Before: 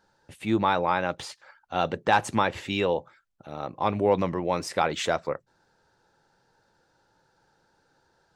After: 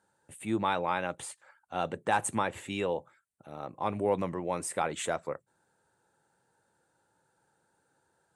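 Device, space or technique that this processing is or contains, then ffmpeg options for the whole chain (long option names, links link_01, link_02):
budget condenser microphone: -filter_complex "[0:a]highpass=77,lowpass=8600,highshelf=frequency=6900:width_type=q:width=3:gain=11,asettb=1/sr,asplit=3[link_01][link_02][link_03];[link_01]atrim=end=0.644[link_04];[link_02]atrim=start=0.64:end=1.07,asetpts=PTS-STARTPTS,afade=type=in:duration=0.004:curve=qsin,afade=type=out:start_time=0.426:duration=0.004:curve=qsin,equalizer=frequency=3100:width_type=o:width=0.99:gain=6[link_05];[link_03]atrim=start=1.066[link_06];[link_04][link_05]acrossfade=duration=0.004:curve1=hsin:curve2=qsin[link_07];[link_07][link_06]acrossfade=duration=0.004:curve1=qsin:curve2=hsin,volume=-6dB"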